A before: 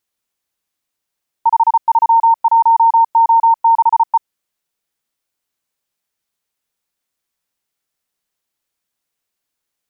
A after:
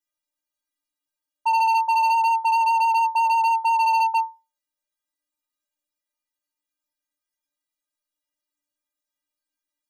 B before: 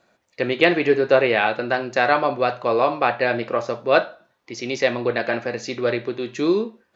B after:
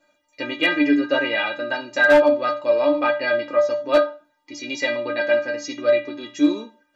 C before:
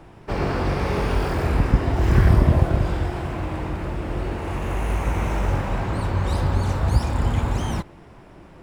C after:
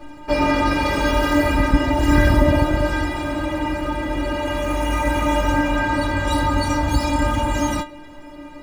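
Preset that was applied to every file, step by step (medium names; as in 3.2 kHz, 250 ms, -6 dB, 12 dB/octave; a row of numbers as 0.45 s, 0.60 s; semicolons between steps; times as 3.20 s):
inharmonic resonator 290 Hz, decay 0.29 s, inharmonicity 0.008; overload inside the chain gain 22 dB; normalise loudness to -20 LUFS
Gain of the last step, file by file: +4.5 dB, +14.0 dB, +22.5 dB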